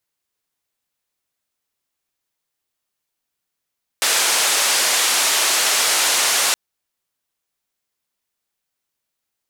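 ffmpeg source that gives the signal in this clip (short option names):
-f lavfi -i "anoisesrc=c=white:d=2.52:r=44100:seed=1,highpass=f=510,lowpass=f=9100,volume=-8.7dB"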